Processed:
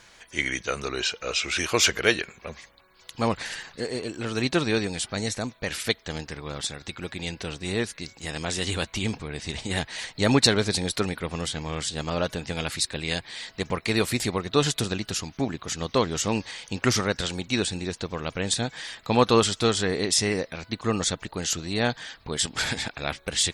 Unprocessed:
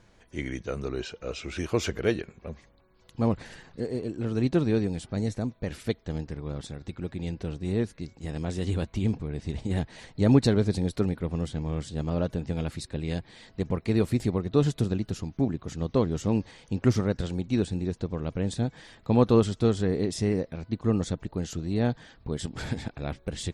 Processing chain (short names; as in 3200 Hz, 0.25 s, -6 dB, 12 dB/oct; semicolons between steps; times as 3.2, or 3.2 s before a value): tilt shelf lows -10 dB, about 720 Hz; gain +5.5 dB